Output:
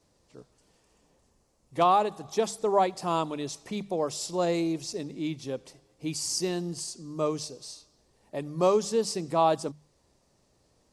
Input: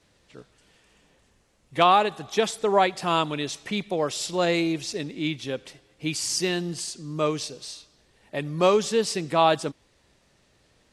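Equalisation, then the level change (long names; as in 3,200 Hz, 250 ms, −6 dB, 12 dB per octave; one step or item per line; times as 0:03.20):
flat-topped bell 2,300 Hz −9 dB
mains-hum notches 50/100/150/200 Hz
−3.0 dB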